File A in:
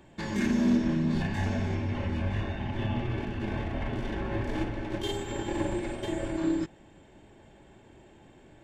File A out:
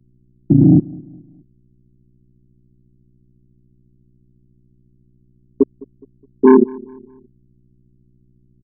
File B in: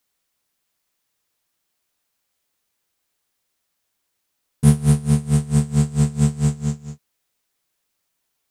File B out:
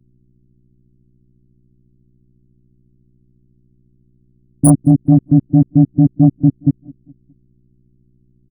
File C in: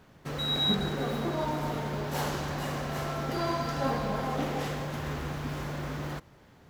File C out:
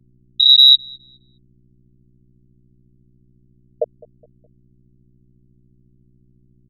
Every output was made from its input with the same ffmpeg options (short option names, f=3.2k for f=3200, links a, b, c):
-filter_complex "[0:a]highpass=f=240:w=0.5412,highpass=f=240:w=1.3066,aemphasis=mode=production:type=cd,bandreject=f=50:t=h:w=6,bandreject=f=100:t=h:w=6,bandreject=f=150:t=h:w=6,bandreject=f=200:t=h:w=6,bandreject=f=250:t=h:w=6,bandreject=f=300:t=h:w=6,bandreject=f=350:t=h:w=6,bandreject=f=400:t=h:w=6,bandreject=f=450:t=h:w=6,bandreject=f=500:t=h:w=6,afftfilt=real='re*gte(hypot(re,im),0.398)':imag='im*gte(hypot(re,im),0.398)':win_size=1024:overlap=0.75,highshelf=f=4.7k:g=-5.5,aecho=1:1:6.1:0.72,asoftclip=type=tanh:threshold=-21.5dB,apsyclip=36dB,aeval=exprs='val(0)+0.00398*(sin(2*PI*60*n/s)+sin(2*PI*2*60*n/s)/2+sin(2*PI*3*60*n/s)/3+sin(2*PI*4*60*n/s)/4+sin(2*PI*5*60*n/s)/5)':c=same,aeval=exprs='val(0)*sin(2*PI*67*n/s)':c=same,asplit=2[a][b];[b]adelay=208,lowpass=f=2.2k:p=1,volume=-22.5dB,asplit=2[c][d];[d]adelay=208,lowpass=f=2.2k:p=1,volume=0.42,asplit=2[e][f];[f]adelay=208,lowpass=f=2.2k:p=1,volume=0.42[g];[c][e][g]amix=inputs=3:normalize=0[h];[a][h]amix=inputs=2:normalize=0,volume=-2dB"